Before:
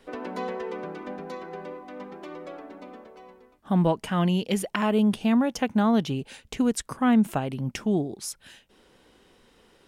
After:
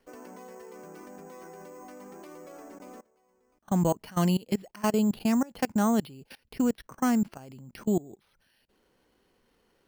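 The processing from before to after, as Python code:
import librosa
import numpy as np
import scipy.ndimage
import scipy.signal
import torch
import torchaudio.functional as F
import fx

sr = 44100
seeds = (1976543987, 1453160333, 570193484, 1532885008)

y = np.repeat(scipy.signal.resample_poly(x, 1, 6), 6)[:len(x)]
y = fx.level_steps(y, sr, step_db=23)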